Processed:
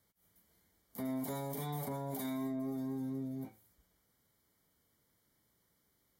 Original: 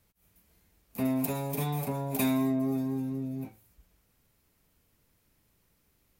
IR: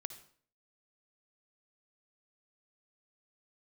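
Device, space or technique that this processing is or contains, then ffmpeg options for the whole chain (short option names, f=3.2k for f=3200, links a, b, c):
PA system with an anti-feedback notch: -af "highpass=f=140:p=1,asuperstop=centerf=2600:order=20:qfactor=4.7,alimiter=level_in=3.5dB:limit=-24dB:level=0:latency=1:release=18,volume=-3.5dB,volume=-4dB"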